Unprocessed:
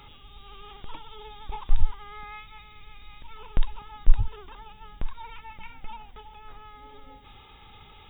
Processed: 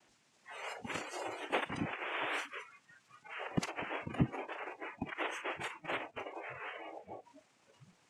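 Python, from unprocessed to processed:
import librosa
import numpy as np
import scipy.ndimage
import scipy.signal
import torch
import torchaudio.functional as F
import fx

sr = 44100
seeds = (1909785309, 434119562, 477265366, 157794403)

y = fx.noise_vocoder(x, sr, seeds[0], bands=4)
y = fx.noise_reduce_blind(y, sr, reduce_db=22)
y = y * 10.0 ** (5.0 / 20.0)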